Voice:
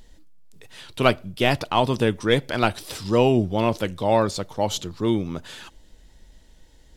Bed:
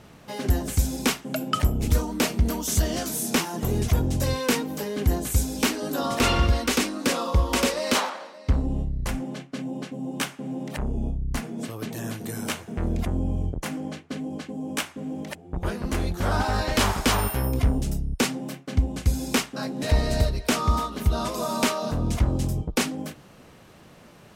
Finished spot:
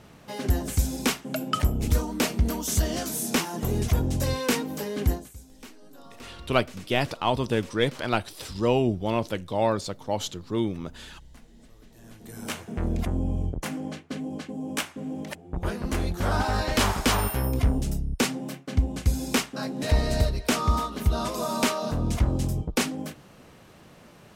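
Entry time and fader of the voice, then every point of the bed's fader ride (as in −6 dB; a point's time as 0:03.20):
5.50 s, −4.5 dB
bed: 0:05.10 −1.5 dB
0:05.34 −23 dB
0:11.89 −23 dB
0:12.59 −1 dB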